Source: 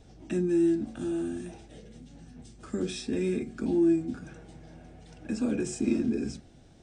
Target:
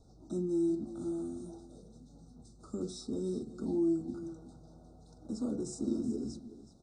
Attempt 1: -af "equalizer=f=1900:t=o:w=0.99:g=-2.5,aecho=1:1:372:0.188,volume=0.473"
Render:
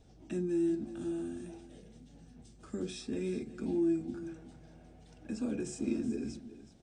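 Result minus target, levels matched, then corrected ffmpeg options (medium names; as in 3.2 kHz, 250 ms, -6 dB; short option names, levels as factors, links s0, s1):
2 kHz band +17.0 dB
-af "asuperstop=centerf=2300:order=20:qfactor=1,equalizer=f=1900:t=o:w=0.99:g=-2.5,aecho=1:1:372:0.188,volume=0.473"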